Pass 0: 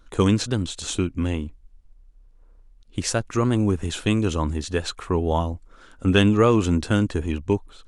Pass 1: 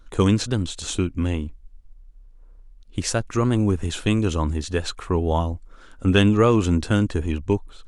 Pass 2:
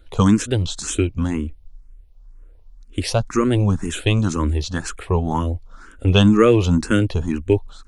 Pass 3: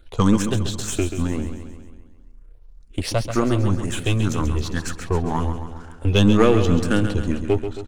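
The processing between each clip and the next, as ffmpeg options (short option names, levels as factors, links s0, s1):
-af "lowshelf=f=60:g=6"
-filter_complex "[0:a]asplit=2[s0][s1];[s1]afreqshift=2[s2];[s0][s2]amix=inputs=2:normalize=1,volume=2"
-filter_complex "[0:a]aeval=exprs='if(lt(val(0),0),0.447*val(0),val(0))':c=same,asplit=2[s0][s1];[s1]aecho=0:1:135|270|405|540|675|810|945:0.355|0.202|0.115|0.0657|0.0375|0.0213|0.0122[s2];[s0][s2]amix=inputs=2:normalize=0"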